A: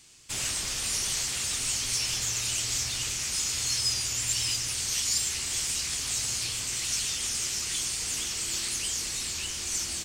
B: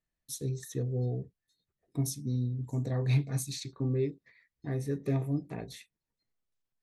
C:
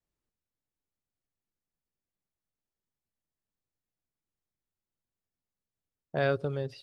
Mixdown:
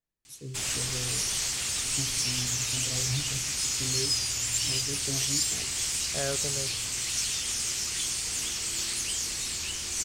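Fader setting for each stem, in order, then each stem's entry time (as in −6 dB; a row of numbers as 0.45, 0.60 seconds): 0.0, −6.5, −5.5 decibels; 0.25, 0.00, 0.00 seconds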